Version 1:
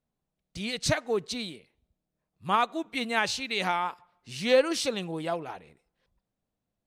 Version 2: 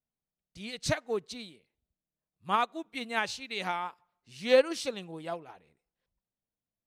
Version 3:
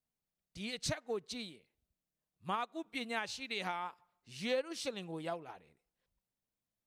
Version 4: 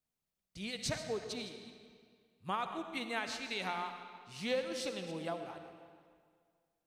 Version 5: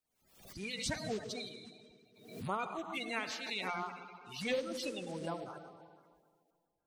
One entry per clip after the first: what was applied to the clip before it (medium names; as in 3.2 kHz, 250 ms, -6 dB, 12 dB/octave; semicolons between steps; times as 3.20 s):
upward expansion 1.5:1, over -40 dBFS
compression 3:1, threshold -36 dBFS, peak gain reduction 14 dB
chunks repeated in reverse 155 ms, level -13.5 dB; reverberation RT60 2.0 s, pre-delay 35 ms, DRR 7.5 dB
coarse spectral quantiser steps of 30 dB; swell ahead of each attack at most 84 dB/s